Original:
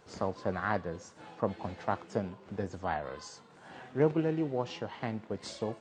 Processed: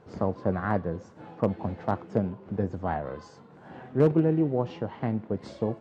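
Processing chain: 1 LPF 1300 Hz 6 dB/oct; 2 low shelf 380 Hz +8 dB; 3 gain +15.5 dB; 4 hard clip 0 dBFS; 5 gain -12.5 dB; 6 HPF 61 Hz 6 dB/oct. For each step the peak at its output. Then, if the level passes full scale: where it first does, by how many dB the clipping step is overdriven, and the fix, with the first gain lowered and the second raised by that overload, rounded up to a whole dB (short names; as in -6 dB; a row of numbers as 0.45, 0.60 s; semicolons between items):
-14.5, -10.0, +5.5, 0.0, -12.5, -11.0 dBFS; step 3, 5.5 dB; step 3 +9.5 dB, step 5 -6.5 dB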